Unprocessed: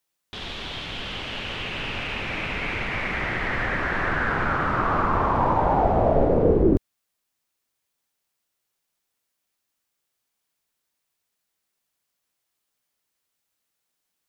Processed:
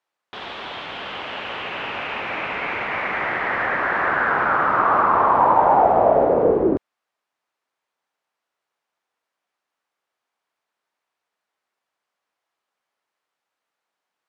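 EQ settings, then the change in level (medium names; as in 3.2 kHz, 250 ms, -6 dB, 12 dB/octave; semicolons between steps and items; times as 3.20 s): band-pass filter 940 Hz, Q 0.86; +7.5 dB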